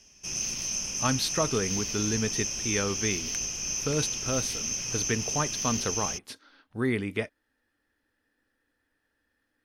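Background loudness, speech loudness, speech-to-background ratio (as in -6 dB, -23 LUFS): -29.5 LUFS, -31.5 LUFS, -2.0 dB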